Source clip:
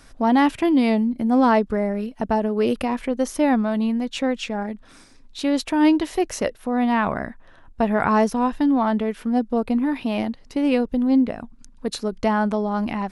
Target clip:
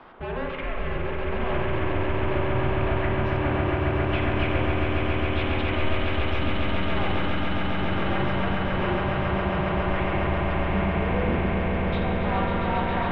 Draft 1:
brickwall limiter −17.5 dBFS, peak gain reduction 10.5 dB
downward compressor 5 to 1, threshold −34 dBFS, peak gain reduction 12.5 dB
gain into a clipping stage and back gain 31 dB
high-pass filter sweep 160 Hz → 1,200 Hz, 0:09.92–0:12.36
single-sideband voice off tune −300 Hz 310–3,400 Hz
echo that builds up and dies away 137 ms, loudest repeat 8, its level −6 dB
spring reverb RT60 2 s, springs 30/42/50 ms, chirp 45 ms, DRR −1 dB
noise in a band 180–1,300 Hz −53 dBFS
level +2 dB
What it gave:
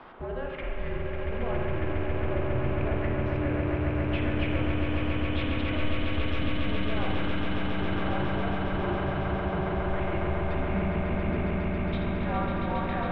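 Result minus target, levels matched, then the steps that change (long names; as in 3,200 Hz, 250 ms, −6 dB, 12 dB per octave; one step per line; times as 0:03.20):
downward compressor: peak gain reduction +12.5 dB
remove: downward compressor 5 to 1, threshold −34 dBFS, peak gain reduction 12.5 dB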